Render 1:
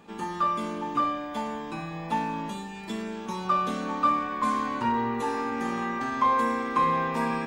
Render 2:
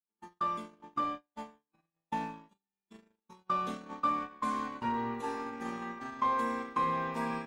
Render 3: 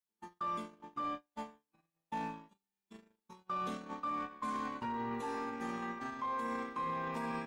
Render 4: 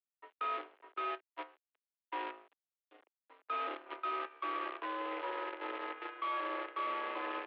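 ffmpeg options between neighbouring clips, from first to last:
ffmpeg -i in.wav -af "agate=range=-51dB:threshold=-29dB:ratio=16:detection=peak,volume=-7dB" out.wav
ffmpeg -i in.wav -af "alimiter=level_in=6.5dB:limit=-24dB:level=0:latency=1:release=11,volume=-6.5dB" out.wav
ffmpeg -i in.wav -af "acrusher=bits=7:dc=4:mix=0:aa=0.000001,highpass=frequency=270:width_type=q:width=0.5412,highpass=frequency=270:width_type=q:width=1.307,lowpass=frequency=3000:width_type=q:width=0.5176,lowpass=frequency=3000:width_type=q:width=0.7071,lowpass=frequency=3000:width_type=q:width=1.932,afreqshift=85" out.wav

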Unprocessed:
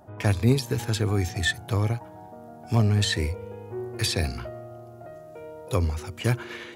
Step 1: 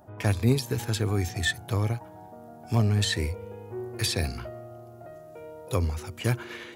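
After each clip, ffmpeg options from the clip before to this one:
ffmpeg -i in.wav -af "highshelf=frequency=12000:gain=6,volume=-2dB" out.wav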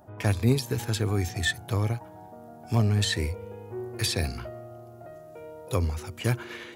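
ffmpeg -i in.wav -af anull out.wav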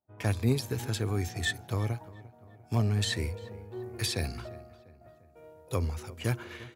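ffmpeg -i in.wav -filter_complex "[0:a]agate=range=-33dB:threshold=-37dB:ratio=3:detection=peak,asplit=2[link_01][link_02];[link_02]adelay=348,lowpass=frequency=2400:poles=1,volume=-19dB,asplit=2[link_03][link_04];[link_04]adelay=348,lowpass=frequency=2400:poles=1,volume=0.55,asplit=2[link_05][link_06];[link_06]adelay=348,lowpass=frequency=2400:poles=1,volume=0.55,asplit=2[link_07][link_08];[link_08]adelay=348,lowpass=frequency=2400:poles=1,volume=0.55,asplit=2[link_09][link_10];[link_10]adelay=348,lowpass=frequency=2400:poles=1,volume=0.55[link_11];[link_01][link_03][link_05][link_07][link_09][link_11]amix=inputs=6:normalize=0,volume=-4dB" out.wav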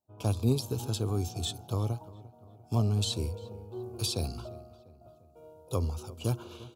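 ffmpeg -i in.wav -af "asuperstop=centerf=1900:order=4:qfactor=1.2" out.wav

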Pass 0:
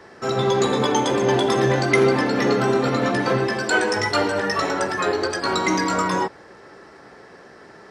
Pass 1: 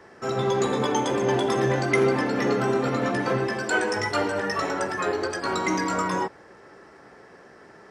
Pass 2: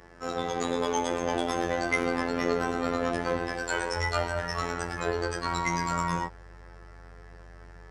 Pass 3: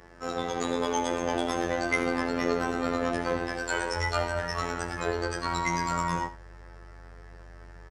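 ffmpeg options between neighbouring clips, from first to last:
ffmpeg -i in.wav -af "equalizer=frequency=4100:width=2.3:gain=-5,volume=-4dB" out.wav
ffmpeg -i in.wav -af "afftfilt=real='hypot(re,im)*cos(PI*b)':imag='0':win_size=2048:overlap=0.75,aeval=exprs='val(0)+0.00126*(sin(2*PI*50*n/s)+sin(2*PI*2*50*n/s)/2+sin(2*PI*3*50*n/s)/3+sin(2*PI*4*50*n/s)/4+sin(2*PI*5*50*n/s)/5)':channel_layout=same,asubboost=boost=4.5:cutoff=110" out.wav
ffmpeg -i in.wav -af "aecho=1:1:78:0.178" out.wav

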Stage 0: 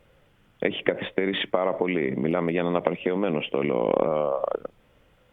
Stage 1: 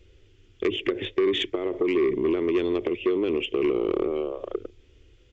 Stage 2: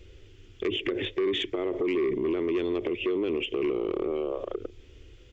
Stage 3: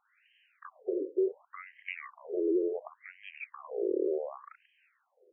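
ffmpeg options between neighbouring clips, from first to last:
ffmpeg -i in.wav -af "firequalizer=gain_entry='entry(100,0);entry(150,-23);entry(370,2);entry(550,-20);entry(870,-23);entry(2500,-8);entry(4700,-2)':delay=0.05:min_phase=1,aresample=16000,asoftclip=type=tanh:threshold=-25dB,aresample=44100,volume=9dB" out.wav
ffmpeg -i in.wav -af "alimiter=level_in=2.5dB:limit=-24dB:level=0:latency=1:release=105,volume=-2.5dB,volume=5dB" out.wav
ffmpeg -i in.wav -af "highpass=140,lowpass=3400,afftfilt=real='re*between(b*sr/1024,400*pow(2300/400,0.5+0.5*sin(2*PI*0.69*pts/sr))/1.41,400*pow(2300/400,0.5+0.5*sin(2*PI*0.69*pts/sr))*1.41)':imag='im*between(b*sr/1024,400*pow(2300/400,0.5+0.5*sin(2*PI*0.69*pts/sr))/1.41,400*pow(2300/400,0.5+0.5*sin(2*PI*0.69*pts/sr))*1.41)':win_size=1024:overlap=0.75" out.wav

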